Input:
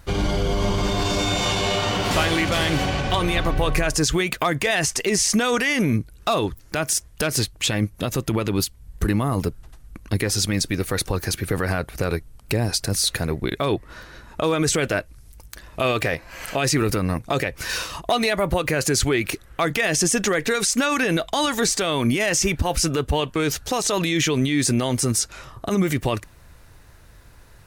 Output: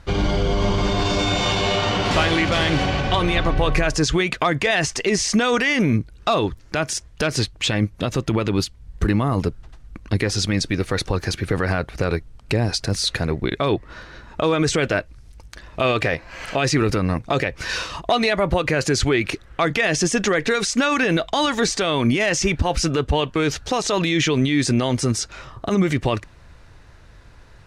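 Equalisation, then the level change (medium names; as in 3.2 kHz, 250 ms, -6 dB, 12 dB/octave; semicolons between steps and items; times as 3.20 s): low-pass 5.5 kHz 12 dB/octave; +2.0 dB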